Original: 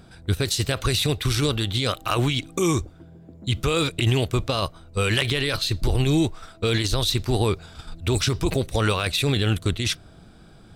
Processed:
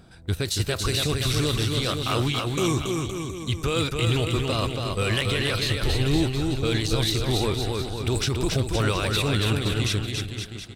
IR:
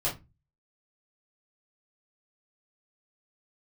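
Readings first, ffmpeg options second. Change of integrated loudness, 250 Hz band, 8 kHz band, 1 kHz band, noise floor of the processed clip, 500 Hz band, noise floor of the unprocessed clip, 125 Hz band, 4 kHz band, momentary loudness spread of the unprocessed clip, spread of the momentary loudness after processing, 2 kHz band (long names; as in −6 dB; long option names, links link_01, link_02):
−1.0 dB, −1.0 dB, −1.0 dB, −1.0 dB, −38 dBFS, −1.0 dB, −49 dBFS, −0.5 dB, −1.0 dB, 6 LU, 5 LU, −1.0 dB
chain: -filter_complex "[0:a]asplit=2[link_01][link_02];[link_02]volume=18dB,asoftclip=hard,volume=-18dB,volume=-6.5dB[link_03];[link_01][link_03]amix=inputs=2:normalize=0,aecho=1:1:280|518|720.3|892.3|1038:0.631|0.398|0.251|0.158|0.1,volume=-6dB"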